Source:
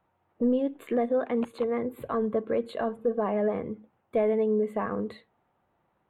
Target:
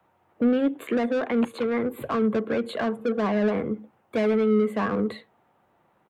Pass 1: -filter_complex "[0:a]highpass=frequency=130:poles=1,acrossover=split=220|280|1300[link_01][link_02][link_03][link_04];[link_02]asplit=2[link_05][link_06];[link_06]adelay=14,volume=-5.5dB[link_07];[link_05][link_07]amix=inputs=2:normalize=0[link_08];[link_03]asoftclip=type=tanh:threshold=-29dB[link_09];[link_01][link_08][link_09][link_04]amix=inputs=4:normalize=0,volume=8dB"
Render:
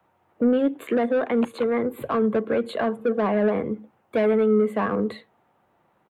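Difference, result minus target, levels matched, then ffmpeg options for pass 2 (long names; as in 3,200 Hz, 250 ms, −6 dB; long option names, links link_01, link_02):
soft clipping: distortion −5 dB
-filter_complex "[0:a]highpass=frequency=130:poles=1,acrossover=split=220|280|1300[link_01][link_02][link_03][link_04];[link_02]asplit=2[link_05][link_06];[link_06]adelay=14,volume=-5.5dB[link_07];[link_05][link_07]amix=inputs=2:normalize=0[link_08];[link_03]asoftclip=type=tanh:threshold=-35.5dB[link_09];[link_01][link_08][link_09][link_04]amix=inputs=4:normalize=0,volume=8dB"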